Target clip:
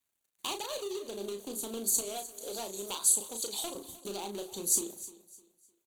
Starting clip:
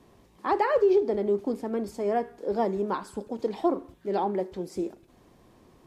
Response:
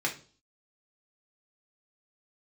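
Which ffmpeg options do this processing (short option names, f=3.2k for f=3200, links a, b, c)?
-filter_complex "[0:a]asetnsamples=n=441:p=0,asendcmd='2.01 highpass f 1100;3.75 highpass f 170',highpass=f=230:p=1,agate=range=-17dB:threshold=-52dB:ratio=16:detection=peak,equalizer=f=2.9k:t=o:w=1.8:g=-11.5,acompressor=threshold=-36dB:ratio=8,volume=35dB,asoftclip=hard,volume=-35dB,aexciter=amount=12.4:drive=9.2:freq=3k,aeval=exprs='sgn(val(0))*max(abs(val(0))-0.00119,0)':c=same,asuperstop=centerf=5200:order=4:qfactor=3.8,asplit=2[a][b];[b]adelay=35,volume=-6.5dB[c];[a][c]amix=inputs=2:normalize=0,aecho=1:1:304|608|912:0.141|0.0438|0.0136" -ar 44100 -c:a nellymoser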